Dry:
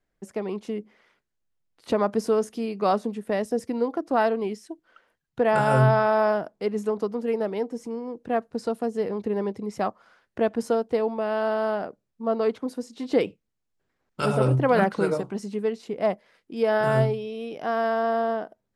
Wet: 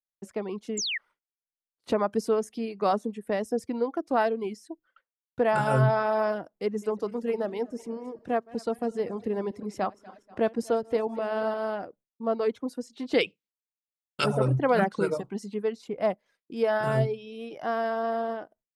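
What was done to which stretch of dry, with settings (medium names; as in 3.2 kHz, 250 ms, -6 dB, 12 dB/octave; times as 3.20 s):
0.77–0.98 s: painted sound fall 1.7–7.8 kHz -28 dBFS
6.63–11.54 s: backward echo that repeats 120 ms, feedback 66%, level -13.5 dB
13.14–14.24 s: frequency weighting D
whole clip: expander -48 dBFS; reverb removal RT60 0.7 s; trim -2 dB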